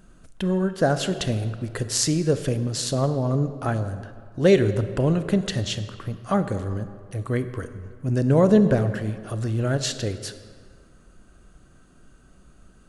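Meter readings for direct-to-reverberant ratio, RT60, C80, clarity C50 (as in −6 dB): 10.5 dB, 2.0 s, 12.5 dB, 11.5 dB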